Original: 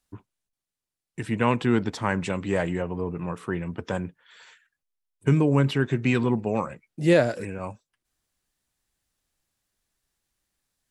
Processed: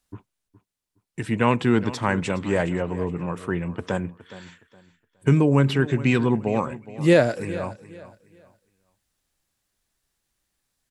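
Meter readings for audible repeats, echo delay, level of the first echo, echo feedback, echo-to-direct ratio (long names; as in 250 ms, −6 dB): 2, 416 ms, −16.5 dB, 27%, −16.0 dB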